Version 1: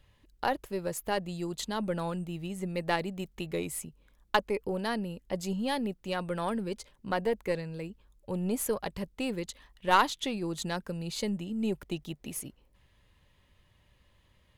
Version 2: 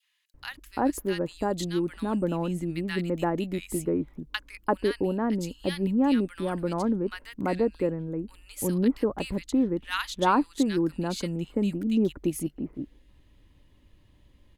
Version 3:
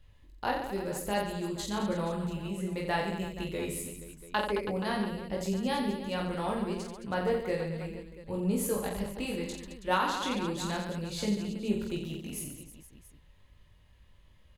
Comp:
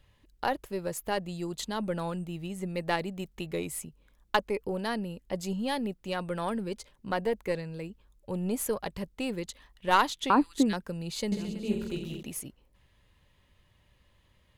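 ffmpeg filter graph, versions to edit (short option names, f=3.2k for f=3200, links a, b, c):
-filter_complex "[0:a]asplit=3[a][b][c];[a]atrim=end=10.302[d];[1:a]atrim=start=10.298:end=10.732[e];[b]atrim=start=10.728:end=11.322[f];[2:a]atrim=start=11.318:end=12.232[g];[c]atrim=start=12.228[h];[d][e]acrossfade=d=0.004:c1=hsin:c2=hsin[i];[i][f]acrossfade=d=0.004:c1=hsin:c2=hsin[j];[j][g]acrossfade=d=0.004:c1=hsin:c2=hsin[k];[k][h]acrossfade=d=0.004:c1=hsin:c2=hsin"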